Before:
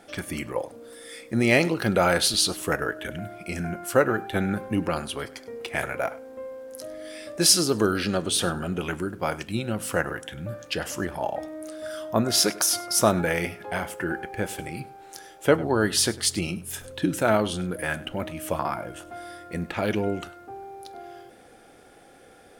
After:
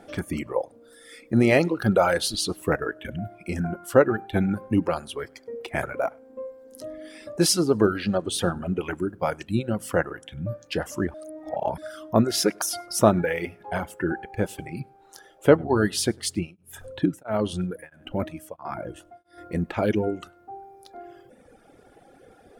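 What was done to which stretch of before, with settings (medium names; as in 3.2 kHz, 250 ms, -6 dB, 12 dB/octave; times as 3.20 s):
11.14–11.78 s: reverse
16.24–19.38 s: tremolo of two beating tones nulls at 1.5 Hz
whole clip: reverb removal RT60 1.7 s; tilt shelf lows +5 dB, about 1.3 kHz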